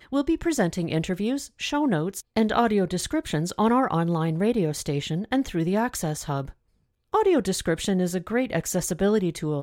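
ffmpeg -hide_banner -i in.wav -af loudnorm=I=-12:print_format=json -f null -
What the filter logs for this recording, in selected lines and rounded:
"input_i" : "-25.0",
"input_tp" : "-8.2",
"input_lra" : "1.8",
"input_thresh" : "-35.1",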